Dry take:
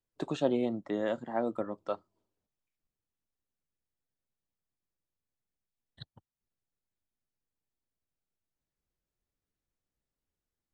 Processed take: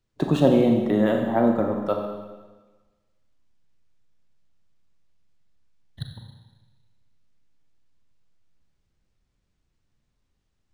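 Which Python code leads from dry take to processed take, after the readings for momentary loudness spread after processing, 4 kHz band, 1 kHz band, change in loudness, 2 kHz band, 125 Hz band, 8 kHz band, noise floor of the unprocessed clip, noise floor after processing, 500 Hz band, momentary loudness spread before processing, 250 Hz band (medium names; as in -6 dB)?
21 LU, +9.0 dB, +10.0 dB, +12.0 dB, +9.5 dB, +18.0 dB, no reading, under -85 dBFS, -74 dBFS, +10.5 dB, 23 LU, +13.5 dB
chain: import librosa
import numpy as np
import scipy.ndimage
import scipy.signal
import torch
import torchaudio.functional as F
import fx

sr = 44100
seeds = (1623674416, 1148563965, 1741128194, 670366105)

y = fx.bass_treble(x, sr, bass_db=9, treble_db=1)
y = fx.rev_schroeder(y, sr, rt60_s=1.3, comb_ms=30, drr_db=2.5)
y = np.interp(np.arange(len(y)), np.arange(len(y))[::3], y[::3])
y = F.gain(torch.from_numpy(y), 8.0).numpy()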